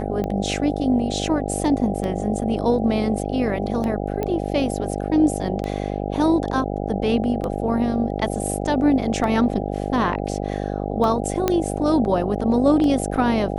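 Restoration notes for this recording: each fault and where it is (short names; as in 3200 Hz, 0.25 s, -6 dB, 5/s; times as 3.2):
buzz 50 Hz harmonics 16 -26 dBFS
tick 33 1/3 rpm -15 dBFS
4.23 pop -13 dBFS
11.48 pop -5 dBFS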